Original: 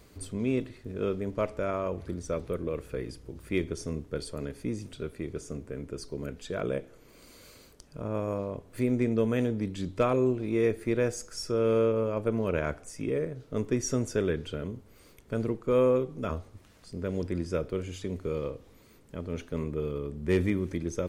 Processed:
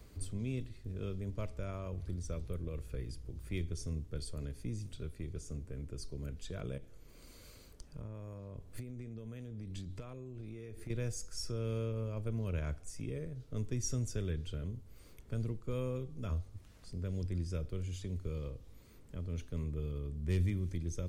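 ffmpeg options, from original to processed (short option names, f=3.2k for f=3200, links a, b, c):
-filter_complex "[0:a]asettb=1/sr,asplit=3[a][b][c];[a]atrim=end=6.774[d];[b]atrim=start=6.77:end=10.9,asetpts=PTS-STARTPTS,afade=t=in:d=0.004:c=qsin,afade=t=out:st=4.126:d=0.004:c=qsin,acompressor=threshold=-35dB:ratio=6:attack=3.2:release=140:knee=1:detection=peak[e];[c]atrim=start=10.896[f];[d][e]acrossfade=d=0.004:c1=hsin:c2=qsin[g];[g][f]acrossfade=d=0.004:c1=qsin:c2=hsin,lowshelf=f=110:g=11,acrossover=split=150|3000[h][i][j];[i]acompressor=threshold=-58dB:ratio=1.5[k];[h][k][j]amix=inputs=3:normalize=0,volume=-4.5dB"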